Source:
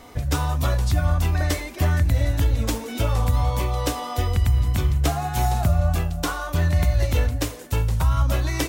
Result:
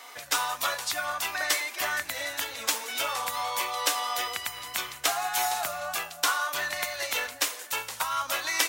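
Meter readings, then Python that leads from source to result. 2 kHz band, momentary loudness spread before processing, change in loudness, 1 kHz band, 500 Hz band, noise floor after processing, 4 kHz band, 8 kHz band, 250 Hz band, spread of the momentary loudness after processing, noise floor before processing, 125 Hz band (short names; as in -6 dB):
+4.0 dB, 5 LU, -6.0 dB, -0.5 dB, -7.5 dB, -45 dBFS, +4.5 dB, +4.5 dB, -20.5 dB, 5 LU, -36 dBFS, -37.0 dB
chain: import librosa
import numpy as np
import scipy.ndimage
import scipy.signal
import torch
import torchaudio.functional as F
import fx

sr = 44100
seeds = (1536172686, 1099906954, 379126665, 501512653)

y = scipy.signal.sosfilt(scipy.signal.butter(2, 1100.0, 'highpass', fs=sr, output='sos'), x)
y = y * librosa.db_to_amplitude(4.5)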